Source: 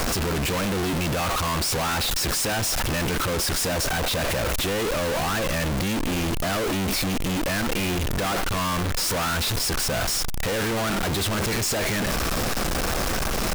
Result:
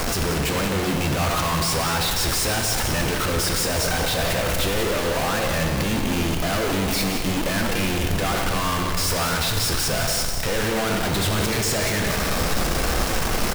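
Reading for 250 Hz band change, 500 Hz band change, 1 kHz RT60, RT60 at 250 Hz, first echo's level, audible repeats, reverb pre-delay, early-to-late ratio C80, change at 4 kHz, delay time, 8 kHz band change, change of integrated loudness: +2.0 dB, +2.0 dB, 1.9 s, 2.2 s, -9.5 dB, 1, 9 ms, 4.5 dB, +2.0 dB, 0.183 s, +2.0 dB, +2.0 dB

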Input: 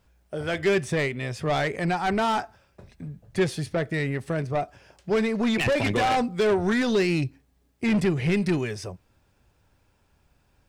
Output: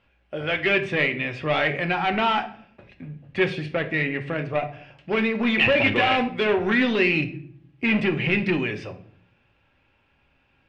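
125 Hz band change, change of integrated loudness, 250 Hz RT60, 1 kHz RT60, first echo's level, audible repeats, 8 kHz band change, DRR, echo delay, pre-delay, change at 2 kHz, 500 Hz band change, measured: -2.0 dB, +2.5 dB, 0.90 s, 0.50 s, none, none, under -10 dB, 5.0 dB, none, 4 ms, +7.0 dB, +0.5 dB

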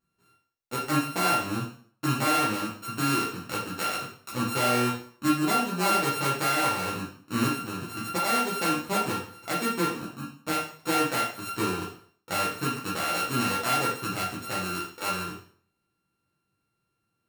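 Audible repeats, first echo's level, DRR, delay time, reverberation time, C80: none, none, -6.5 dB, none, 0.50 s, 9.0 dB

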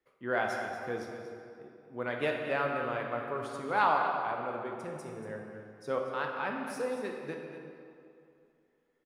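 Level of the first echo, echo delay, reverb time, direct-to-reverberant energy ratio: -11.0 dB, 0.236 s, 2.6 s, 0.5 dB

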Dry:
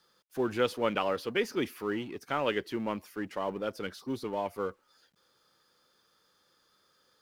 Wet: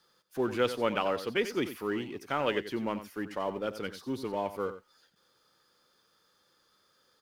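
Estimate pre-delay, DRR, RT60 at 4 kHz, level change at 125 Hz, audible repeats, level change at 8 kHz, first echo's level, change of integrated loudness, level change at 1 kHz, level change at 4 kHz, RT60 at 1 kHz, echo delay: none, none, none, +0.5 dB, 1, +0.5 dB, -12.0 dB, +0.5 dB, +0.5 dB, +0.5 dB, none, 90 ms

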